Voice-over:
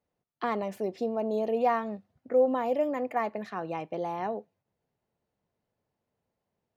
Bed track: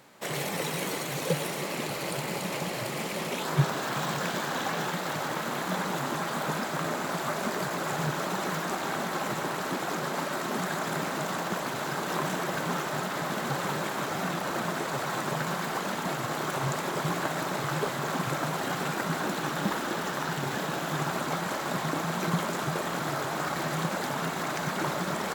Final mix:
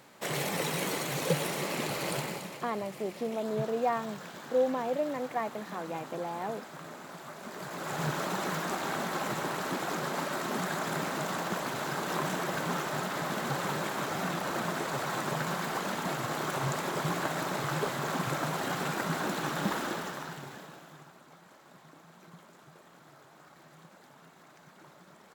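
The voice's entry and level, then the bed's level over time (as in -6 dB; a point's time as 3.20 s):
2.20 s, -3.5 dB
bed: 2.18 s -0.5 dB
2.65 s -14 dB
7.39 s -14 dB
8.06 s -2 dB
19.85 s -2 dB
21.16 s -25 dB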